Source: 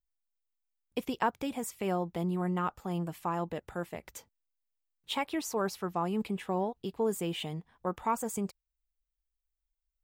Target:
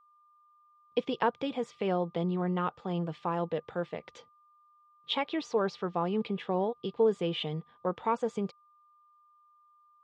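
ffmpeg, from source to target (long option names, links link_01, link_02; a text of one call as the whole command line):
ffmpeg -i in.wav -af "highpass=130,equalizer=frequency=150:width_type=q:width=4:gain=5,equalizer=frequency=480:width_type=q:width=4:gain=8,equalizer=frequency=3400:width_type=q:width=4:gain=6,lowpass=frequency=4800:width=0.5412,lowpass=frequency=4800:width=1.3066,aeval=exprs='val(0)+0.000891*sin(2*PI*1200*n/s)':channel_layout=same" out.wav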